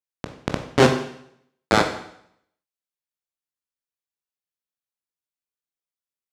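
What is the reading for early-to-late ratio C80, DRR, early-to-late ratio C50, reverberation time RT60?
11.0 dB, 4.0 dB, 8.0 dB, 0.70 s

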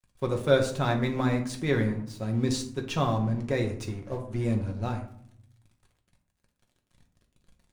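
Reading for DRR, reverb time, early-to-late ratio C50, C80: 2.0 dB, 0.65 s, 10.0 dB, 13.0 dB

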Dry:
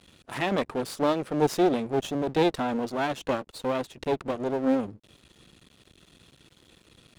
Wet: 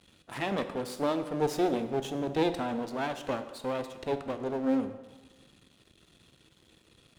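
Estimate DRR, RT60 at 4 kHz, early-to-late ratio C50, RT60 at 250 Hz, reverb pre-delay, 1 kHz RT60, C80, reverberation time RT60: 9.0 dB, 1.1 s, 11.0 dB, 1.3 s, 7 ms, 1.3 s, 12.5 dB, 1.3 s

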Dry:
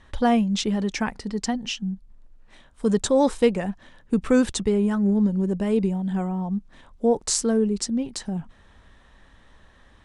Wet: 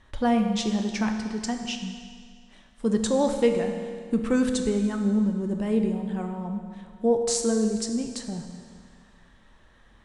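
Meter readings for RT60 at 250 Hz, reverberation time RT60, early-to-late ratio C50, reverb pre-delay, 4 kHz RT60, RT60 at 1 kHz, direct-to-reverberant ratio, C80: 2.0 s, 2.0 s, 6.5 dB, 9 ms, 1.9 s, 2.0 s, 4.5 dB, 7.5 dB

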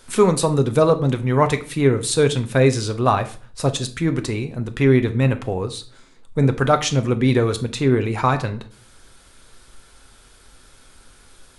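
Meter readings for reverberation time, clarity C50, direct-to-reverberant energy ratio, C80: 0.45 s, 15.0 dB, 7.5 dB, 20.0 dB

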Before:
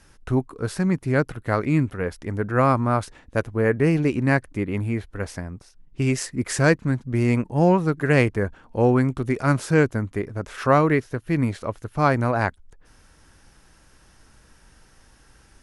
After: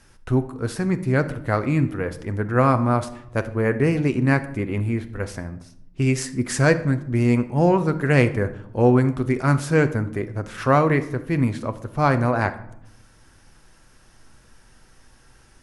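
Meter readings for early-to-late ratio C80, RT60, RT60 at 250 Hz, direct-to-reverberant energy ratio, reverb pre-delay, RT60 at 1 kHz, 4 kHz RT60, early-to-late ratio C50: 17.0 dB, 0.80 s, 1.2 s, 9.0 dB, 8 ms, 0.75 s, 0.40 s, 14.5 dB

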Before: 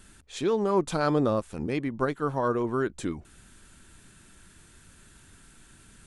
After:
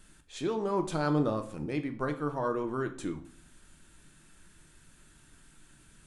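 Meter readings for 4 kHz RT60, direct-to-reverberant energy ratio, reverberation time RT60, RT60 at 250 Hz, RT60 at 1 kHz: 0.40 s, 6.5 dB, 0.55 s, 0.60 s, 0.50 s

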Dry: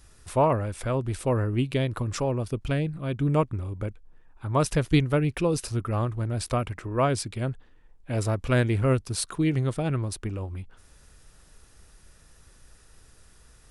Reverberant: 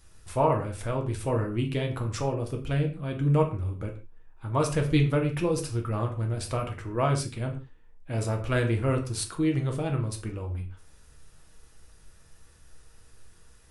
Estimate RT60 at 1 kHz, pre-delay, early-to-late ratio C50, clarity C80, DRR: n/a, 6 ms, 10.5 dB, 14.5 dB, 2.0 dB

